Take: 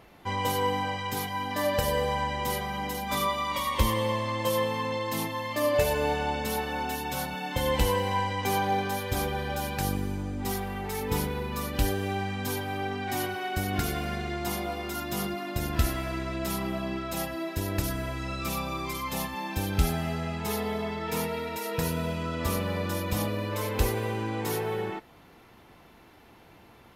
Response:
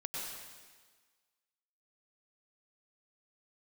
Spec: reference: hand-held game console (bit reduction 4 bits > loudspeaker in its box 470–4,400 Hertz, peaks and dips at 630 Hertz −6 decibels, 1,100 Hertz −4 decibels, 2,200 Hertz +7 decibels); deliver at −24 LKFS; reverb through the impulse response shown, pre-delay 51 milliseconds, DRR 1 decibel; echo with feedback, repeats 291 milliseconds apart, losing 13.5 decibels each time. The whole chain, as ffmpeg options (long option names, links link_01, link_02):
-filter_complex "[0:a]aecho=1:1:291|582:0.211|0.0444,asplit=2[link_01][link_02];[1:a]atrim=start_sample=2205,adelay=51[link_03];[link_02][link_03]afir=irnorm=-1:irlink=0,volume=-2.5dB[link_04];[link_01][link_04]amix=inputs=2:normalize=0,acrusher=bits=3:mix=0:aa=0.000001,highpass=470,equalizer=frequency=630:width_type=q:width=4:gain=-6,equalizer=frequency=1100:width_type=q:width=4:gain=-4,equalizer=frequency=2200:width_type=q:width=4:gain=7,lowpass=frequency=4400:width=0.5412,lowpass=frequency=4400:width=1.3066,volume=4dB"